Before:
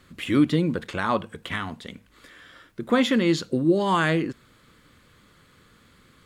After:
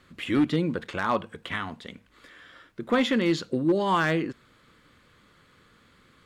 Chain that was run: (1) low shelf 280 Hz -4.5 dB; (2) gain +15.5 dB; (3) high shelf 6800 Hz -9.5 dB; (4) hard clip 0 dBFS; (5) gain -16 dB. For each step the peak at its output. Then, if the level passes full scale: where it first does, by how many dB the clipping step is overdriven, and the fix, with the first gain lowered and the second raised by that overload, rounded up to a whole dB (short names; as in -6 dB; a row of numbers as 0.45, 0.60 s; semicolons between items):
-9.0, +6.5, +5.5, 0.0, -16.0 dBFS; step 2, 5.5 dB; step 2 +9.5 dB, step 5 -10 dB